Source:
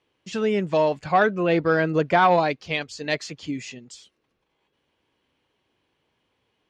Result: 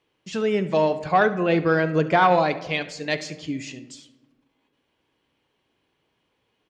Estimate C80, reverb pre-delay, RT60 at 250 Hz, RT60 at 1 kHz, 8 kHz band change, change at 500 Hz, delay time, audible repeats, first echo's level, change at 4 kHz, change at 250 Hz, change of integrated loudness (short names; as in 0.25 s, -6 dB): 17.0 dB, 3 ms, 1.6 s, 1.0 s, 0.0 dB, 0.0 dB, 71 ms, 1, -17.5 dB, +0.5 dB, +1.0 dB, 0.0 dB